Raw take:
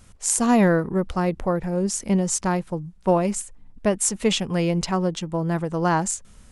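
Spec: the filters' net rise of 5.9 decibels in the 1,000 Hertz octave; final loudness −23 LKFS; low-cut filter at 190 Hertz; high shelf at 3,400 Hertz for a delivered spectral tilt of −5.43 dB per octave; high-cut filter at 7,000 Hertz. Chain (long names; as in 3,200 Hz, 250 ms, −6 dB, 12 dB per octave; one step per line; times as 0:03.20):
high-pass filter 190 Hz
low-pass filter 7,000 Hz
parametric band 1,000 Hz +8 dB
high-shelf EQ 3,400 Hz −6.5 dB
level −0.5 dB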